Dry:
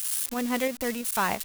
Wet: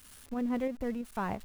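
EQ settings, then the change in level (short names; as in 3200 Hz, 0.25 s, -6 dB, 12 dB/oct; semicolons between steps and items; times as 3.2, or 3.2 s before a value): tilt -3 dB/oct; high shelf 2600 Hz -8 dB; -8.0 dB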